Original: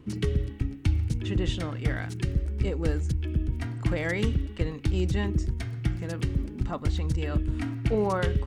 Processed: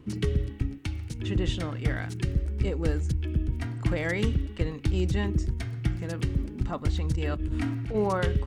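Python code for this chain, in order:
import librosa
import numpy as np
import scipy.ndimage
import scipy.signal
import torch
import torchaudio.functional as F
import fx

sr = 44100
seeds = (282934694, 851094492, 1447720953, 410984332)

y = fx.low_shelf(x, sr, hz=320.0, db=-9.5, at=(0.78, 1.19))
y = fx.over_compress(y, sr, threshold_db=-29.0, ratio=-1.0, at=(7.15, 7.94), fade=0.02)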